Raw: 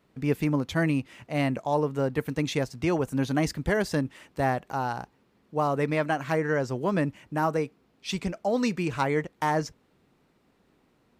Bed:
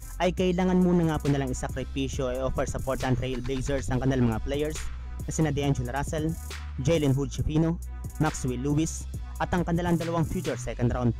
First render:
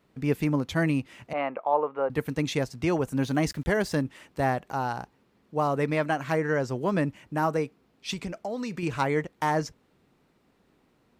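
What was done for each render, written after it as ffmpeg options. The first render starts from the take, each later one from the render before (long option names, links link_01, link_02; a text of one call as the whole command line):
ffmpeg -i in.wav -filter_complex "[0:a]asettb=1/sr,asplit=3[link_01][link_02][link_03];[link_01]atrim=end=1.334[link_04];[link_02]atrim=start=1.33:end=2.1,asetpts=PTS-STARTPTS,afade=type=in:duration=0.004:curve=qsin,afade=type=out:start_time=0.766:duration=0.004:curve=qsin,highpass=500,equalizer=frequency=510:width_type=q:width=4:gain=5,equalizer=frequency=810:width_type=q:width=4:gain=5,equalizer=frequency=1200:width_type=q:width=4:gain=7,equalizer=frequency=1800:width_type=q:width=4:gain=-5,lowpass=frequency=2500:width=0.5412,lowpass=frequency=2500:width=1.3066[link_05];[link_03]atrim=start=2.096[link_06];[link_04][link_05]acrossfade=duration=0.004:curve1=hsin:curve2=qsin[link_07];[link_07][link_06]acrossfade=duration=0.004:curve1=qsin:curve2=hsin,asettb=1/sr,asplit=3[link_08][link_09][link_10];[link_08]atrim=end=3.194[link_11];[link_09]atrim=start=3.19:end=4.02,asetpts=PTS-STARTPTS,afade=type=in:duration=0.004:curve=qsin,afade=type=out:start_time=0.826:duration=0.004:curve=qsin,aeval=exprs='val(0)*gte(abs(val(0)),0.00355)':channel_layout=same[link_12];[link_10]atrim=start=4.016[link_13];[link_11][link_12]acrossfade=duration=0.004:curve1=hsin:curve2=qsin[link_14];[link_14][link_13]acrossfade=duration=0.004:curve1=qsin:curve2=hsin,asettb=1/sr,asplit=3[link_15][link_16][link_17];[link_15]atrim=end=8.134[link_18];[link_16]atrim=start=8.13:end=8.83,asetpts=PTS-STARTPTS,afade=type=in:duration=0.004:curve=qsin,afade=type=out:start_time=0.696:duration=0.004:curve=qsin,acompressor=threshold=-29dB:ratio=6:attack=3.2:release=140:knee=1:detection=peak[link_19];[link_17]atrim=start=8.826[link_20];[link_18][link_19]acrossfade=duration=0.004:curve1=hsin:curve2=qsin[link_21];[link_21][link_20]acrossfade=duration=0.004:curve1=qsin:curve2=hsin" out.wav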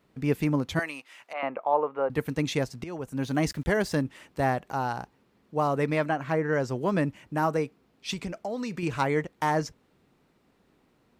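ffmpeg -i in.wav -filter_complex "[0:a]asettb=1/sr,asplit=3[link_01][link_02][link_03];[link_01]atrim=end=0.794[link_04];[link_02]atrim=start=0.79:end=1.43,asetpts=PTS-STARTPTS,afade=type=in:duration=0.004:curve=qsin,afade=type=out:start_time=0.636:duration=0.004:curve=qsin,highpass=800[link_05];[link_03]atrim=start=1.426[link_06];[link_04][link_05]acrossfade=duration=0.004:curve1=hsin:curve2=qsin[link_07];[link_07][link_06]acrossfade=duration=0.004:curve1=qsin:curve2=hsin,asettb=1/sr,asplit=3[link_08][link_09][link_10];[link_08]atrim=end=6.094[link_11];[link_09]atrim=start=6.09:end=6.53,asetpts=PTS-STARTPTS,afade=type=in:duration=0.004:curve=qsin,afade=type=out:start_time=0.436:duration=0.004:curve=qsin,highshelf=frequency=3400:gain=-10.5[link_12];[link_10]atrim=start=6.526[link_13];[link_11][link_12]acrossfade=duration=0.004:curve1=hsin:curve2=qsin[link_14];[link_14][link_13]acrossfade=duration=0.004:curve1=qsin:curve2=hsin,asplit=2[link_15][link_16];[link_15]atrim=end=2.84,asetpts=PTS-STARTPTS,afade=type=out:start_time=2.836:duration=0.004:curve=hsin:silence=0.149624[link_17];[link_16]atrim=start=2.84,asetpts=PTS-STARTPTS,afade=type=in:duration=0.6:silence=0.149624[link_18];[link_17][link_18]concat=n=2:v=0:a=1" out.wav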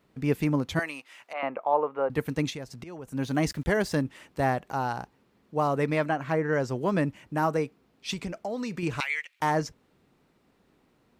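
ffmpeg -i in.wav -filter_complex "[0:a]asettb=1/sr,asplit=3[link_01][link_02][link_03];[link_01]atrim=end=2.504[link_04];[link_02]atrim=start=2.5:end=3.08,asetpts=PTS-STARTPTS,afade=type=in:duration=0.004:curve=qsin,afade=type=out:start_time=0.576:duration=0.004:curve=qsin,acompressor=threshold=-39dB:ratio=2.5:attack=3.2:release=140:knee=1:detection=peak[link_05];[link_03]atrim=start=3.076[link_06];[link_04][link_05]acrossfade=duration=0.004:curve1=hsin:curve2=qsin[link_07];[link_07][link_06]acrossfade=duration=0.004:curve1=qsin:curve2=hsin,asettb=1/sr,asplit=3[link_08][link_09][link_10];[link_08]atrim=end=9.004[link_11];[link_09]atrim=start=9:end=9.4,asetpts=PTS-STARTPTS,afade=type=in:duration=0.004:curve=qsin,afade=type=out:start_time=0.396:duration=0.004:curve=qsin,highpass=frequency=2400:width_type=q:width=3.5[link_12];[link_10]atrim=start=9.396[link_13];[link_11][link_12]acrossfade=duration=0.004:curve1=hsin:curve2=qsin[link_14];[link_14][link_13]acrossfade=duration=0.004:curve1=qsin:curve2=hsin" out.wav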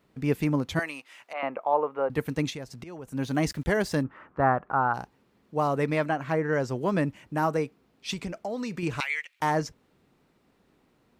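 ffmpeg -i in.wav -filter_complex "[0:a]asplit=3[link_01][link_02][link_03];[link_01]afade=type=out:start_time=4.03:duration=0.02[link_04];[link_02]lowpass=frequency=1300:width_type=q:width=3.5,afade=type=in:start_time=4.03:duration=0.02,afade=type=out:start_time=4.93:duration=0.02[link_05];[link_03]afade=type=in:start_time=4.93:duration=0.02[link_06];[link_04][link_05][link_06]amix=inputs=3:normalize=0" out.wav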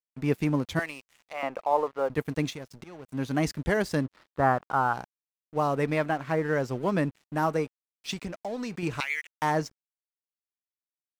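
ffmpeg -i in.wav -af "aeval=exprs='sgn(val(0))*max(abs(val(0))-0.00447,0)':channel_layout=same" out.wav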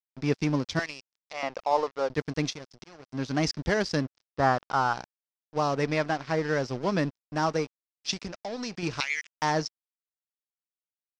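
ffmpeg -i in.wav -af "aeval=exprs='sgn(val(0))*max(abs(val(0))-0.00501,0)':channel_layout=same,lowpass=frequency=5300:width_type=q:width=3.9" out.wav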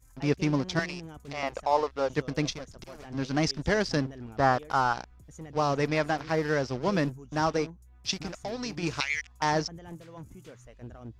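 ffmpeg -i in.wav -i bed.wav -filter_complex "[1:a]volume=-18.5dB[link_01];[0:a][link_01]amix=inputs=2:normalize=0" out.wav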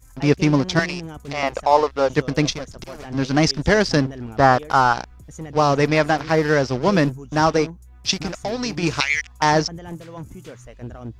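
ffmpeg -i in.wav -af "volume=9.5dB,alimiter=limit=-1dB:level=0:latency=1" out.wav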